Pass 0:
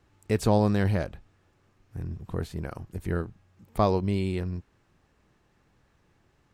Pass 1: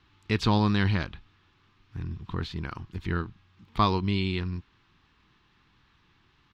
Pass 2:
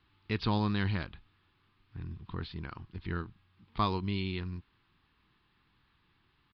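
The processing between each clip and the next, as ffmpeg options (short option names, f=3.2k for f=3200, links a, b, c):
-af "firequalizer=gain_entry='entry(320,0);entry(570,-12);entry(1000,6);entry(1700,4);entry(3500,12);entry(8800,-16)':delay=0.05:min_phase=1"
-af "aresample=11025,aresample=44100,volume=-6.5dB"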